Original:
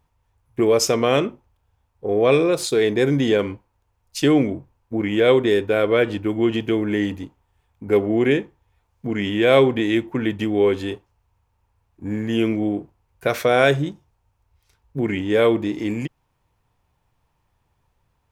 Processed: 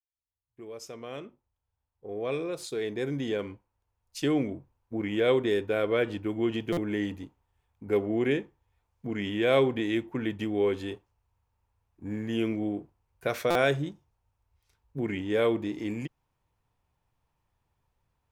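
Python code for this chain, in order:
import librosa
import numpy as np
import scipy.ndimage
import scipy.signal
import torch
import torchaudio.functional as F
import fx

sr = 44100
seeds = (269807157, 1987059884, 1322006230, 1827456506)

y = fx.fade_in_head(x, sr, length_s=5.12)
y = fx.buffer_glitch(y, sr, at_s=(6.72, 13.5), block=256, repeats=8)
y = y * 10.0 ** (-8.5 / 20.0)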